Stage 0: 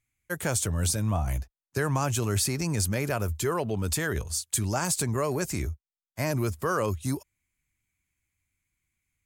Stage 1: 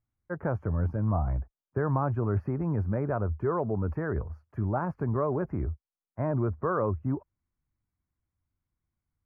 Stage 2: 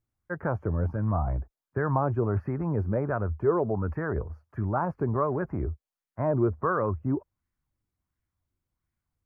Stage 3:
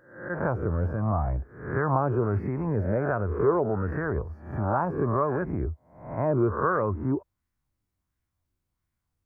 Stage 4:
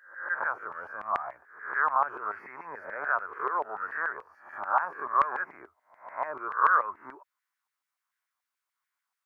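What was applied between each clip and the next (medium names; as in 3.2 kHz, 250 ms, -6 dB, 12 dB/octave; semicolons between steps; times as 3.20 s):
inverse Chebyshev low-pass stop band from 3.4 kHz, stop band 50 dB
sweeping bell 1.4 Hz 350–1900 Hz +7 dB
reverse spectral sustain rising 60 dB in 0.60 s
LFO high-pass saw down 6.9 Hz 930–1900 Hz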